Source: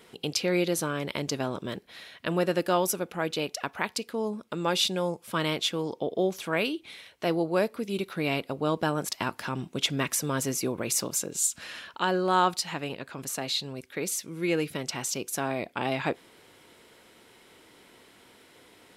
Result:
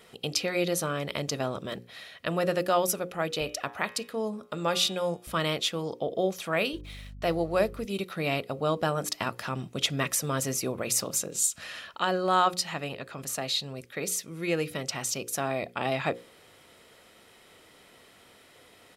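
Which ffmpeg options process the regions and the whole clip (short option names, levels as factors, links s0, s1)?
-filter_complex "[0:a]asettb=1/sr,asplit=3[s0][s1][s2];[s0]atrim=end=3.414[s3];[s1]atrim=start=3.41:end=5.27,asetpts=PTS-STARTPTS,afade=t=in:d=0.004:c=qsin,afade=t=out:st=1.856:d=0.004:c=qsin,highpass=46,bandreject=f=118.7:t=h:w=4,bandreject=f=237.4:t=h:w=4,bandreject=f=356.1:t=h:w=4,bandreject=f=474.8:t=h:w=4,bandreject=f=593.5:t=h:w=4,bandreject=f=712.2:t=h:w=4,bandreject=f=830.9:t=h:w=4,bandreject=f=949.6:t=h:w=4,bandreject=f=1068.3:t=h:w=4,bandreject=f=1187:t=h:w=4,bandreject=f=1305.7:t=h:w=4,bandreject=f=1424.4:t=h:w=4,bandreject=f=1543.1:t=h:w=4,bandreject=f=1661.8:t=h:w=4,bandreject=f=1780.5:t=h:w=4,bandreject=f=1899.2:t=h:w=4,bandreject=f=2017.9:t=h:w=4,bandreject=f=2136.6:t=h:w=4,bandreject=f=2255.3:t=h:w=4,bandreject=f=2374:t=h:w=4,bandreject=f=2492.7:t=h:w=4,bandreject=f=2611.4:t=h:w=4,bandreject=f=2730.1:t=h:w=4,bandreject=f=2848.8:t=h:w=4,bandreject=f=2967.5:t=h:w=4,bandreject=f=3086.2:t=h:w=4,bandreject=f=3204.9:t=h:w=4,bandreject=f=3323.6:t=h:w=4,bandreject=f=3442.3:t=h:w=4,bandreject=f=3561:t=h:w=4,bandreject=f=3679.7:t=h:w=4,bandreject=f=3798.4:t=h:w=4,aeval=exprs='val(0)+0.00794*(sin(2*PI*60*n/s)+sin(2*PI*2*60*n/s)/2+sin(2*PI*3*60*n/s)/3+sin(2*PI*4*60*n/s)/4+sin(2*PI*5*60*n/s)/5)':c=same[s4];[s2]atrim=start=5.266[s5];[s3][s4]acrossfade=d=0.004:c1=hsin:c2=qsin[s6];[s6][s5]acrossfade=d=0.004:c1=qsin:c2=hsin,asettb=1/sr,asplit=3[s7][s8][s9];[s7]atrim=end=6.734[s10];[s8]atrim=start=6.73:end=7.85,asetpts=PTS-STARTPTS,afade=t=in:d=0.004:c=qsin,afade=t=out:st=1.116:d=0.004:c=qsin,aeval=exprs='sgn(val(0))*max(abs(val(0))-0.00141,0)':c=same,aeval=exprs='val(0)+0.00631*(sin(2*PI*50*n/s)+sin(2*PI*2*50*n/s)/2+sin(2*PI*3*50*n/s)/3+sin(2*PI*4*50*n/s)/4+sin(2*PI*5*50*n/s)/5)':c=same[s11];[s9]atrim=start=7.846[s12];[s10][s11]acrossfade=d=0.004:c1=hsin:c2=qsin[s13];[s13][s12]acrossfade=d=0.004:c1=qsin:c2=hsin,bandreject=f=60:t=h:w=6,bandreject=f=120:t=h:w=6,bandreject=f=180:t=h:w=6,bandreject=f=240:t=h:w=6,bandreject=f=300:t=h:w=6,bandreject=f=360:t=h:w=6,bandreject=f=420:t=h:w=6,bandreject=f=480:t=h:w=6,bandreject=f=540:t=h:w=6,aecho=1:1:1.6:0.32"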